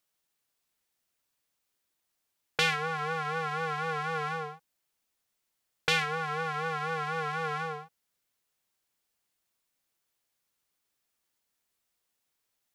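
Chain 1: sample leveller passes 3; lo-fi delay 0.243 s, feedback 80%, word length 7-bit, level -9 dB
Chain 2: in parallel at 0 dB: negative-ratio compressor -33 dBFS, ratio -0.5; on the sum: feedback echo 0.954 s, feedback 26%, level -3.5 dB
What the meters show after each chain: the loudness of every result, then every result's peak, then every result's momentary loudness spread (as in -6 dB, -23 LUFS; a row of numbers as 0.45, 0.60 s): -22.0, -26.5 LUFS; -7.0, -6.5 dBFS; 18, 16 LU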